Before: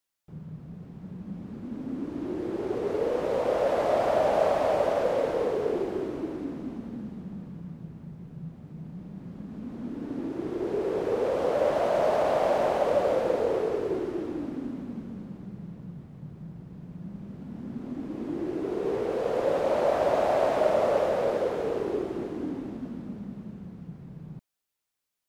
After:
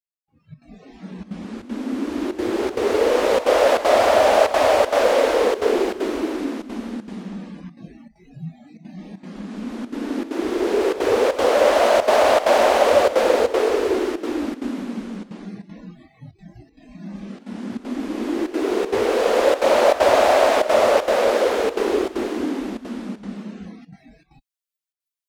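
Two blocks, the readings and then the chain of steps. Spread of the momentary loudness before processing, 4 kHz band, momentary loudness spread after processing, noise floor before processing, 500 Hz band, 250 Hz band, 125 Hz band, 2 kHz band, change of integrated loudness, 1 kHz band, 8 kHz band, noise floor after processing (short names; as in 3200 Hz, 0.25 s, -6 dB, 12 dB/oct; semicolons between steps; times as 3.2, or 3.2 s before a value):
18 LU, +16.5 dB, 19 LU, -49 dBFS, +8.5 dB, +7.5 dB, -0.5 dB, +14.0 dB, +9.0 dB, +10.0 dB, n/a, -65 dBFS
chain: spectral noise reduction 26 dB; tilt shelf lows -6 dB, about 1200 Hz; AGC gain up to 14 dB; step gate "xx.xxxx.xxxxxx" 195 bpm -12 dB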